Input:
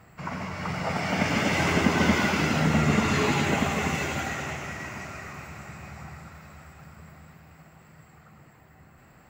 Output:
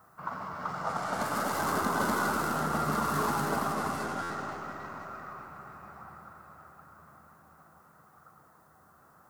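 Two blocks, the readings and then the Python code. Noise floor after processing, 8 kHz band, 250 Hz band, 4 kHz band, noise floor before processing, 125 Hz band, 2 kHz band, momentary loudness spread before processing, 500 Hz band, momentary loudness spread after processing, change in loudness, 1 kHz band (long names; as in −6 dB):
−60 dBFS, −5.0 dB, −9.5 dB, −11.0 dB, −55 dBFS, −11.5 dB, −8.0 dB, 19 LU, −5.5 dB, 19 LU, −6.0 dB, −0.5 dB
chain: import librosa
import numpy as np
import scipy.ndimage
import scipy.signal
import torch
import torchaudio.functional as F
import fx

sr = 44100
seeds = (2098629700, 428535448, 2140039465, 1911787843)

p1 = fx.tracing_dist(x, sr, depth_ms=0.23)
p2 = fx.env_lowpass(p1, sr, base_hz=2600.0, full_db=-21.0)
p3 = fx.tilt_eq(p2, sr, slope=3.0)
p4 = fx.dmg_noise_colour(p3, sr, seeds[0], colour='blue', level_db=-56.0)
p5 = fx.high_shelf_res(p4, sr, hz=1700.0, db=-10.0, q=3.0)
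p6 = p5 + fx.echo_bbd(p5, sr, ms=267, stages=1024, feedback_pct=60, wet_db=-5.0, dry=0)
p7 = fx.buffer_glitch(p6, sr, at_s=(4.22,), block=512, repeats=6)
y = F.gain(torch.from_numpy(p7), -5.0).numpy()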